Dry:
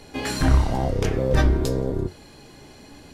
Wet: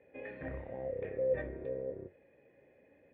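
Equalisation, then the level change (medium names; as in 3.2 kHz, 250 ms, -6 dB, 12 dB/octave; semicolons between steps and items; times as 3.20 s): cascade formant filter e; high-pass 73 Hz; -4.5 dB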